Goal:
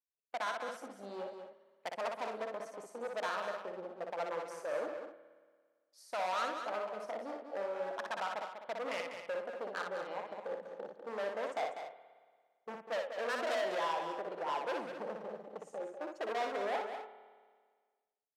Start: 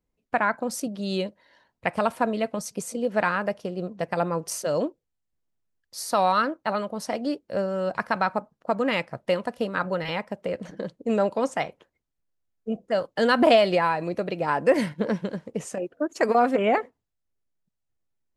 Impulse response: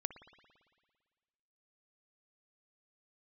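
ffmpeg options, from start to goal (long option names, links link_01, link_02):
-filter_complex "[0:a]afwtdn=0.0501,asplit=3[link_01][link_02][link_03];[link_01]afade=type=out:start_time=11.51:duration=0.02[link_04];[link_02]acontrast=49,afade=type=in:start_time=11.51:duration=0.02,afade=type=out:start_time=12.97:duration=0.02[link_05];[link_03]afade=type=in:start_time=12.97:duration=0.02[link_06];[link_04][link_05][link_06]amix=inputs=3:normalize=0,asoftclip=type=hard:threshold=-25dB,bandpass=frequency=560:width_type=q:width=0.88:csg=0,aderivative,aecho=1:1:196:0.398,asplit=2[link_07][link_08];[1:a]atrim=start_sample=2205,adelay=60[link_09];[link_08][link_09]afir=irnorm=-1:irlink=0,volume=-2.5dB[link_10];[link_07][link_10]amix=inputs=2:normalize=0,volume=12.5dB"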